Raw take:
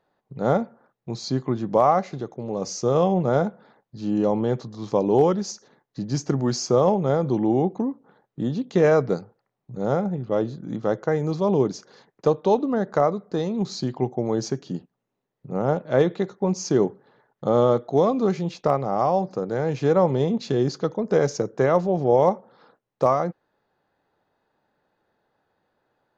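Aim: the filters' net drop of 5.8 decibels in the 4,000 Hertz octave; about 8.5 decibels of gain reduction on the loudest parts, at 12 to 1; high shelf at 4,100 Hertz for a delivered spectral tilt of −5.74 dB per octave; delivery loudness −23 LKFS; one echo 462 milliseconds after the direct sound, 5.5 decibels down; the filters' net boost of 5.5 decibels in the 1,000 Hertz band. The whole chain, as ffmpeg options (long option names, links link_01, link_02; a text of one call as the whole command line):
ffmpeg -i in.wav -af "equalizer=frequency=1000:width_type=o:gain=8,equalizer=frequency=4000:width_type=o:gain=-4,highshelf=frequency=4100:gain=-5.5,acompressor=threshold=-18dB:ratio=12,aecho=1:1:462:0.531,volume=2.5dB" out.wav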